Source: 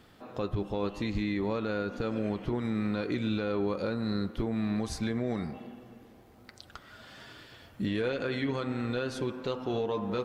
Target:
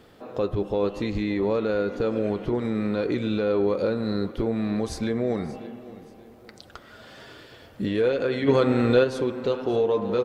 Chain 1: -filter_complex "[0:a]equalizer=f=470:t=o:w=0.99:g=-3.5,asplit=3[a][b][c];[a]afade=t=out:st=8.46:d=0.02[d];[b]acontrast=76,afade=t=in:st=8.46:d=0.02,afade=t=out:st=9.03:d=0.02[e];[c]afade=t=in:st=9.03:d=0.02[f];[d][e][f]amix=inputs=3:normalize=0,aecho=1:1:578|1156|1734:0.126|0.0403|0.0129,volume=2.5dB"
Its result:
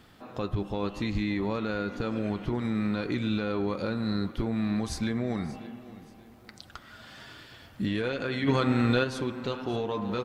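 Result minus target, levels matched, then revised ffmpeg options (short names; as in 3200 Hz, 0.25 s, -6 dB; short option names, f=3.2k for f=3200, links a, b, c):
500 Hz band -4.5 dB
-filter_complex "[0:a]equalizer=f=470:t=o:w=0.99:g=7.5,asplit=3[a][b][c];[a]afade=t=out:st=8.46:d=0.02[d];[b]acontrast=76,afade=t=in:st=8.46:d=0.02,afade=t=out:st=9.03:d=0.02[e];[c]afade=t=in:st=9.03:d=0.02[f];[d][e][f]amix=inputs=3:normalize=0,aecho=1:1:578|1156|1734:0.126|0.0403|0.0129,volume=2.5dB"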